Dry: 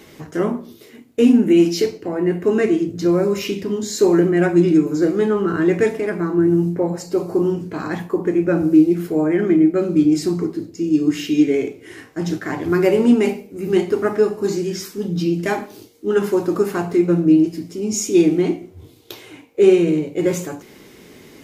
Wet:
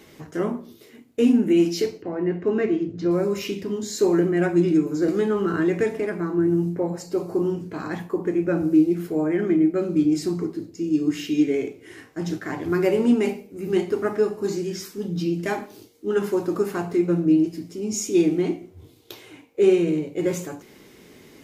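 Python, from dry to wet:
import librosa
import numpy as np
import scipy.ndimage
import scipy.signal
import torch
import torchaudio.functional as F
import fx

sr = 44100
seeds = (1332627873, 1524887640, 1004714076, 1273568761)

y = fx.air_absorb(x, sr, metres=150.0, at=(2.02, 3.11))
y = fx.band_squash(y, sr, depth_pct=70, at=(5.08, 6.05))
y = y * 10.0 ** (-5.0 / 20.0)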